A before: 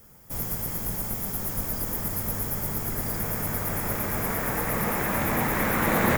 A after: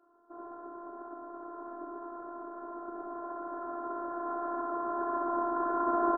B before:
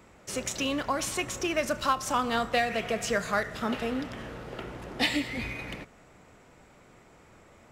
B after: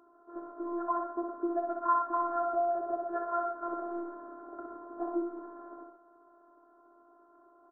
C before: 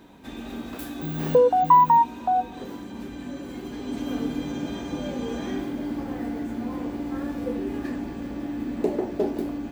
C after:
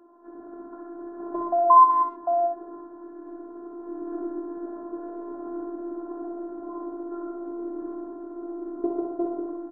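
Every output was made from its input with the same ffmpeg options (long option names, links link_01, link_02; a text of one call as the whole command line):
ffmpeg -i in.wav -af "afftfilt=real='re*between(b*sr/4096,230,1600)':imag='im*between(b*sr/4096,230,1600)':win_size=4096:overlap=0.75,afftfilt=real='hypot(re,im)*cos(PI*b)':imag='0':win_size=512:overlap=0.75,aecho=1:1:62|117|133:0.562|0.316|0.266" out.wav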